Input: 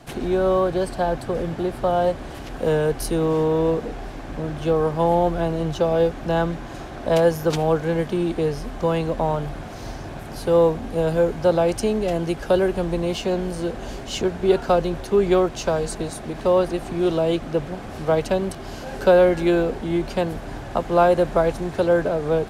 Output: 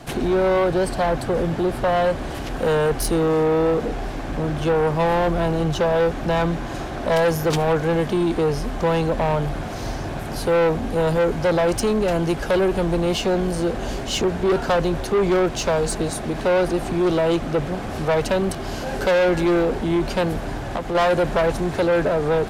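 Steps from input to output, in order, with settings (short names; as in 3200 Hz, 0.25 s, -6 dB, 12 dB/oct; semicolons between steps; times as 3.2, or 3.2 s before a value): soft clip -21 dBFS, distortion -8 dB; 20.48–20.95 compressor, threshold -29 dBFS, peak gain reduction 5.5 dB; gain +6 dB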